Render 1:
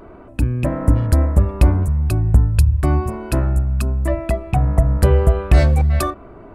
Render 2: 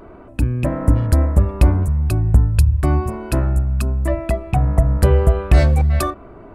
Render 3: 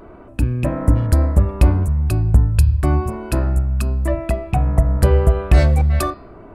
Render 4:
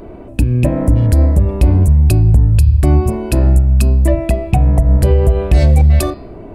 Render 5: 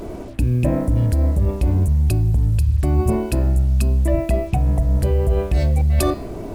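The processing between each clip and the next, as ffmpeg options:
-af anull
-af "bandreject=f=132.9:t=h:w=4,bandreject=f=265.8:t=h:w=4,bandreject=f=398.7:t=h:w=4,bandreject=f=531.6:t=h:w=4,bandreject=f=664.5:t=h:w=4,bandreject=f=797.4:t=h:w=4,bandreject=f=930.3:t=h:w=4,bandreject=f=1063.2:t=h:w=4,bandreject=f=1196.1:t=h:w=4,bandreject=f=1329:t=h:w=4,bandreject=f=1461.9:t=h:w=4,bandreject=f=1594.8:t=h:w=4,bandreject=f=1727.7:t=h:w=4,bandreject=f=1860.6:t=h:w=4,bandreject=f=1993.5:t=h:w=4,bandreject=f=2126.4:t=h:w=4,bandreject=f=2259.3:t=h:w=4,bandreject=f=2392.2:t=h:w=4,bandreject=f=2525.1:t=h:w=4,bandreject=f=2658:t=h:w=4,bandreject=f=2790.9:t=h:w=4,bandreject=f=2923.8:t=h:w=4,bandreject=f=3056.7:t=h:w=4,bandreject=f=3189.6:t=h:w=4,bandreject=f=3322.5:t=h:w=4,bandreject=f=3455.4:t=h:w=4,bandreject=f=3588.3:t=h:w=4,bandreject=f=3721.2:t=h:w=4,bandreject=f=3854.1:t=h:w=4,bandreject=f=3987:t=h:w=4,bandreject=f=4119.9:t=h:w=4,bandreject=f=4252.8:t=h:w=4,bandreject=f=4385.7:t=h:w=4,bandreject=f=4518.6:t=h:w=4,bandreject=f=4651.5:t=h:w=4,bandreject=f=4784.4:t=h:w=4,bandreject=f=4917.3:t=h:w=4"
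-af "equalizer=f=1300:w=1.5:g=-12.5,alimiter=limit=0.266:level=0:latency=1:release=129,volume=2.82"
-af "areverse,acompressor=threshold=0.158:ratio=8,areverse,acrusher=bits=7:mix=0:aa=0.5,volume=1.26"

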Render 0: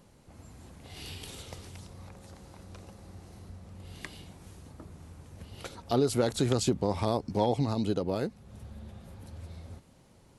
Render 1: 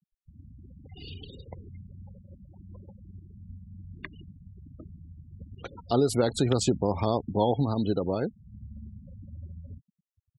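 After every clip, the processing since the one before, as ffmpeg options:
-af "afftfilt=real='re*gte(hypot(re,im),0.0126)':imag='im*gte(hypot(re,im),0.0126)':win_size=1024:overlap=0.75,volume=1.33"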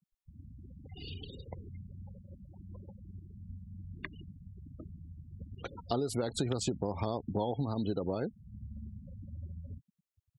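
-af "acompressor=threshold=0.0447:ratio=6,volume=0.841"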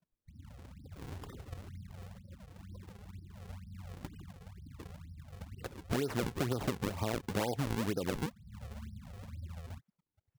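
-af "acrusher=samples=41:mix=1:aa=0.000001:lfo=1:lforange=65.6:lforate=2.1,volume=0.891"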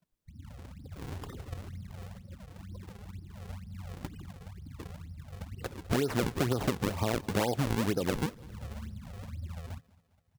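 -af "aecho=1:1:203|406|609|812:0.0794|0.0429|0.0232|0.0125,volume=1.68"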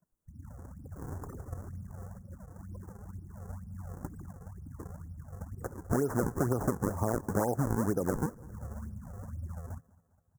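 -af "asuperstop=centerf=3200:order=8:qfactor=0.68"

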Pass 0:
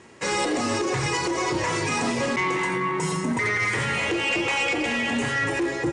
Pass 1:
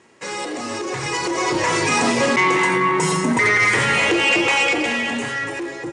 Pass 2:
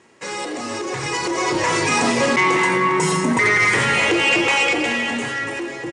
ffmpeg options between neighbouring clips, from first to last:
-af "lowshelf=f=110:g=-12,dynaudnorm=f=210:g=13:m=3.76,volume=0.708"
-af "aecho=1:1:514|1028|1542|2056:0.126|0.0592|0.0278|0.0131"

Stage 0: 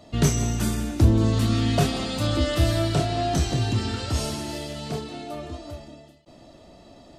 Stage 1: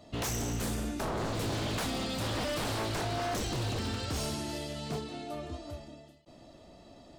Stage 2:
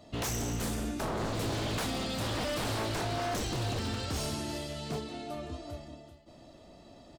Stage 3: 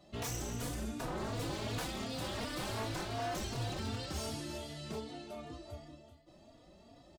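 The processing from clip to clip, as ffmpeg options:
-af "aeval=exprs='0.0708*(abs(mod(val(0)/0.0708+3,4)-2)-1)':c=same,volume=0.562"
-filter_complex "[0:a]asplit=2[s0][s1];[s1]adelay=390.7,volume=0.2,highshelf=f=4000:g=-8.79[s2];[s0][s2]amix=inputs=2:normalize=0"
-filter_complex "[0:a]asplit=2[s0][s1];[s1]adelay=3.5,afreqshift=2.7[s2];[s0][s2]amix=inputs=2:normalize=1,volume=0.75"

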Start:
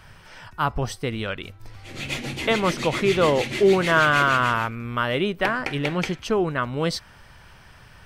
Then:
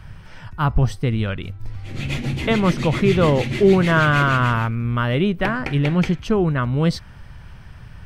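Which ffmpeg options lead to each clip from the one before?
-af "bass=f=250:g=12,treble=f=4000:g=-4"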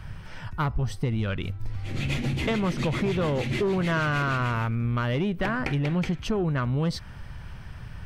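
-af "asoftclip=type=tanh:threshold=0.237,acompressor=threshold=0.0708:ratio=6"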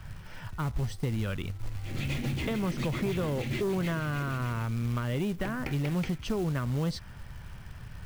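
-filter_complex "[0:a]acrossover=split=430[s0][s1];[s1]acompressor=threshold=0.0316:ratio=6[s2];[s0][s2]amix=inputs=2:normalize=0,acrusher=bits=5:mode=log:mix=0:aa=0.000001,volume=0.631"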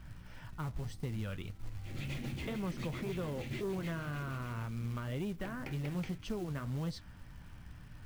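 -af "aeval=exprs='val(0)+0.00447*(sin(2*PI*60*n/s)+sin(2*PI*2*60*n/s)/2+sin(2*PI*3*60*n/s)/3+sin(2*PI*4*60*n/s)/4+sin(2*PI*5*60*n/s)/5)':c=same,flanger=delay=5:depth=6.8:regen=-58:speed=1.9:shape=sinusoidal,volume=0.631"

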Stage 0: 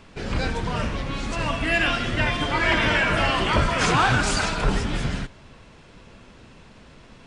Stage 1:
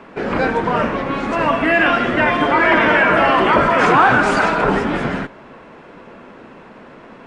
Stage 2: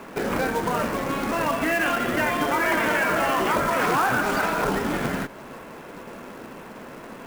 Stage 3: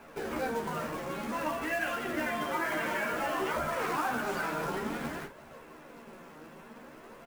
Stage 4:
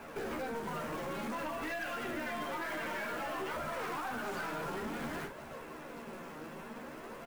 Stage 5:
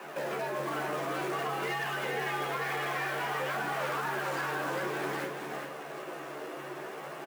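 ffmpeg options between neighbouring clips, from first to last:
-filter_complex "[0:a]acrossover=split=200 2100:gain=0.0891 1 0.112[s0][s1][s2];[s0][s1][s2]amix=inputs=3:normalize=0,asplit=2[s3][s4];[s4]alimiter=limit=0.106:level=0:latency=1:release=21,volume=1.26[s5];[s3][s5]amix=inputs=2:normalize=0,volume=1.88"
-af "acompressor=threshold=0.0447:ratio=2,acrusher=bits=3:mode=log:mix=0:aa=0.000001"
-filter_complex "[0:a]flanger=delay=1.2:depth=5.4:regen=44:speed=0.55:shape=triangular,asplit=2[s0][s1];[s1]aecho=0:1:13|52:0.668|0.335[s2];[s0][s2]amix=inputs=2:normalize=0,volume=0.398"
-af "acompressor=threshold=0.0141:ratio=6,aeval=exprs='(tanh(70.8*val(0)+0.25)-tanh(0.25))/70.8':c=same,volume=1.68"
-filter_complex "[0:a]asplit=2[s0][s1];[s1]aecho=0:1:405:0.531[s2];[s0][s2]amix=inputs=2:normalize=0,afreqshift=140,volume=1.58"

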